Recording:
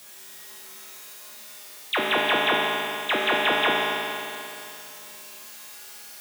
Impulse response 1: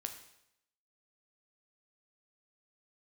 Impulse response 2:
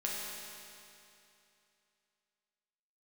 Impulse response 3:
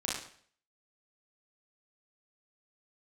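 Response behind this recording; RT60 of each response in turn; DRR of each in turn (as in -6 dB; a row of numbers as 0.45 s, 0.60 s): 2; 0.80 s, 2.8 s, 0.55 s; 5.0 dB, -5.0 dB, -6.0 dB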